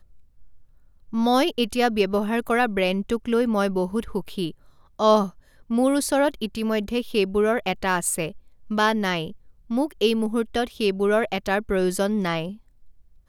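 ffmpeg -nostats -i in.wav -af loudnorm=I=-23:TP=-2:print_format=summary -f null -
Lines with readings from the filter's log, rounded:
Input Integrated:    -23.6 LUFS
Input True Peak:      -6.9 dBTP
Input LRA:             2.4 LU
Input Threshold:     -34.3 LUFS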